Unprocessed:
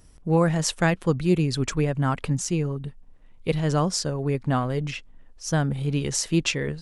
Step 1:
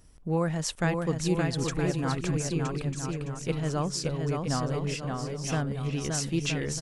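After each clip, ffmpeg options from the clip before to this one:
-filter_complex "[0:a]asplit=2[a][b];[b]acompressor=threshold=-29dB:ratio=6,volume=-2.5dB[c];[a][c]amix=inputs=2:normalize=0,aecho=1:1:570|969|1248|1444|1581:0.631|0.398|0.251|0.158|0.1,volume=-8.5dB"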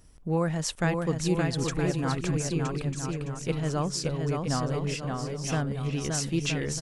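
-af "acontrast=43,volume=-5dB"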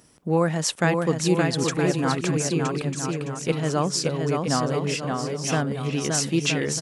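-af "highpass=170,volume=6.5dB"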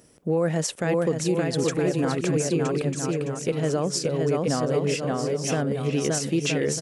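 -af "equalizer=f=500:t=o:w=1:g=6,equalizer=f=1k:t=o:w=1:g=-5,equalizer=f=4k:t=o:w=1:g=-3,alimiter=limit=-14dB:level=0:latency=1:release=76"

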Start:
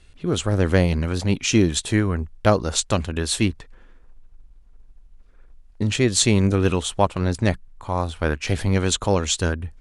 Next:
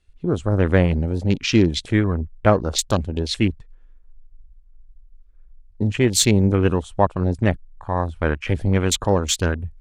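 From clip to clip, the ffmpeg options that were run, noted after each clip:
-af "afwtdn=0.0316,volume=1.5dB"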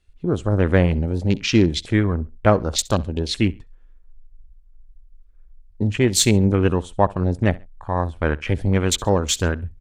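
-af "aecho=1:1:67|134:0.0794|0.023"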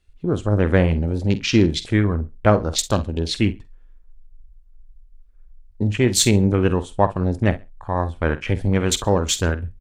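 -filter_complex "[0:a]asplit=2[a][b];[b]adelay=48,volume=-13.5dB[c];[a][c]amix=inputs=2:normalize=0"

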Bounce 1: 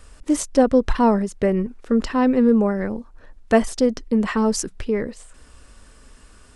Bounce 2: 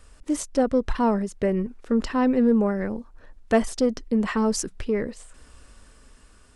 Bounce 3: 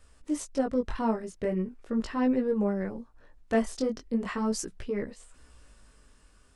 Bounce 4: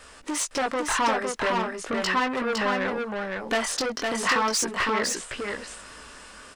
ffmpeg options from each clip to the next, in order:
-filter_complex "[0:a]dynaudnorm=f=470:g=5:m=5dB,asplit=2[a][b];[b]asoftclip=type=tanh:threshold=-11dB,volume=-6.5dB[c];[a][c]amix=inputs=2:normalize=0,volume=-8.5dB"
-af "flanger=delay=15:depth=7.8:speed=0.39,volume=-3.5dB"
-filter_complex "[0:a]asplit=2[a][b];[b]highpass=f=720:p=1,volume=24dB,asoftclip=type=tanh:threshold=-14dB[c];[a][c]amix=inputs=2:normalize=0,lowpass=f=4.4k:p=1,volume=-6dB,acrossover=split=790[d][e];[d]acompressor=threshold=-34dB:ratio=5[f];[f][e]amix=inputs=2:normalize=0,aecho=1:1:509:0.668,volume=2.5dB"

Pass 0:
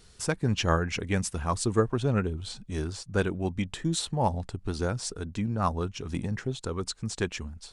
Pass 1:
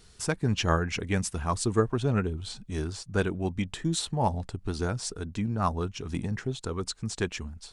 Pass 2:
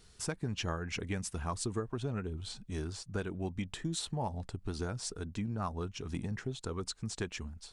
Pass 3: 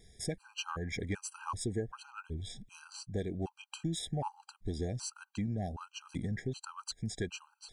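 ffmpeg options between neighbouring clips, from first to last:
-af "bandreject=f=530:w=13"
-af "acompressor=threshold=-27dB:ratio=6,volume=-4.5dB"
-af "asoftclip=type=tanh:threshold=-24dB,afftfilt=real='re*gt(sin(2*PI*1.3*pts/sr)*(1-2*mod(floor(b*sr/1024/800),2)),0)':imag='im*gt(sin(2*PI*1.3*pts/sr)*(1-2*mod(floor(b*sr/1024/800),2)),0)':win_size=1024:overlap=0.75,volume=2dB"

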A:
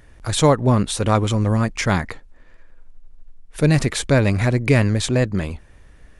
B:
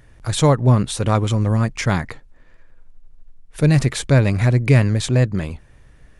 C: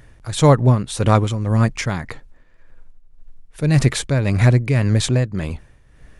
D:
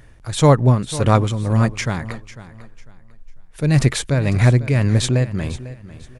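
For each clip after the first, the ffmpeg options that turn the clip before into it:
-af "equalizer=f=130:t=o:w=0.47:g=7,volume=-1.5dB"
-af "tremolo=f=1.8:d=0.63,volume=3.5dB"
-af "aecho=1:1:498|996|1494:0.158|0.0444|0.0124"

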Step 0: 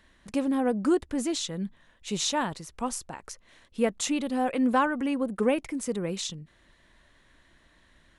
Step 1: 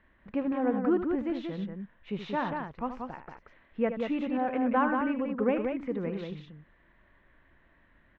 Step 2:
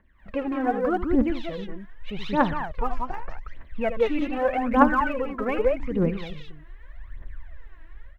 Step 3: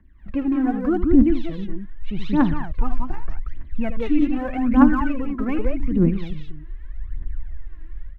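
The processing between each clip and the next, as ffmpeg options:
-filter_complex "[0:a]lowpass=f=2.4k:w=0.5412,lowpass=f=2.4k:w=1.3066,asplit=2[a][b];[b]aecho=0:1:75.8|183.7:0.316|0.562[c];[a][c]amix=inputs=2:normalize=0,volume=-3dB"
-af "dynaudnorm=f=130:g=3:m=11.5dB,asubboost=boost=5.5:cutoff=84,aphaser=in_gain=1:out_gain=1:delay=3.2:decay=0.75:speed=0.83:type=triangular,volume=-7dB"
-filter_complex "[0:a]lowshelf=f=390:t=q:w=3:g=6,acrossover=split=130[a][b];[a]acontrast=82[c];[c][b]amix=inputs=2:normalize=0,volume=-3dB"

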